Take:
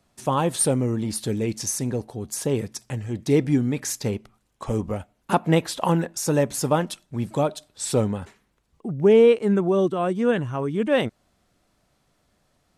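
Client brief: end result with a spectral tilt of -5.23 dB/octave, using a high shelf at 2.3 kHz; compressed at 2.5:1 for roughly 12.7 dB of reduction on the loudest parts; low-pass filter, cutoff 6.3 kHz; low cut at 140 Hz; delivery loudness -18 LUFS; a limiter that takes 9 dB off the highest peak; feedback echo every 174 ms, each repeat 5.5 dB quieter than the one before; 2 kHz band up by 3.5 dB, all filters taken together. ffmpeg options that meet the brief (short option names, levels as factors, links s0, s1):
-af "highpass=140,lowpass=6300,equalizer=f=2000:t=o:g=7.5,highshelf=f=2300:g=-6,acompressor=threshold=0.0282:ratio=2.5,alimiter=limit=0.0668:level=0:latency=1,aecho=1:1:174|348|522|696|870|1044|1218:0.531|0.281|0.149|0.079|0.0419|0.0222|0.0118,volume=6.31"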